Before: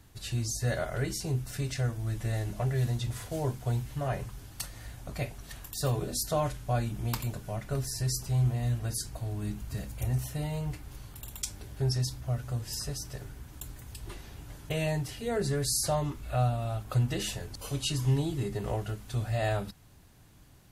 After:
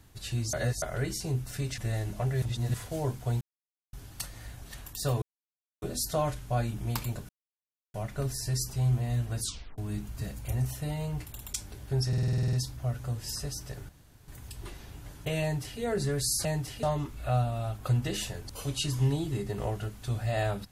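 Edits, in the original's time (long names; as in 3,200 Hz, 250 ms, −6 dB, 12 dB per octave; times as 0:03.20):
0:00.53–0:00.82: reverse
0:01.78–0:02.18: remove
0:02.82–0:03.14: reverse
0:03.81–0:04.33: silence
0:05.02–0:05.40: remove
0:06.00: splice in silence 0.60 s
0:07.47: splice in silence 0.65 s
0:08.94: tape stop 0.37 s
0:10.79–0:11.15: remove
0:11.97: stutter 0.05 s, 10 plays
0:13.33–0:13.72: fill with room tone
0:14.86–0:15.24: duplicate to 0:15.89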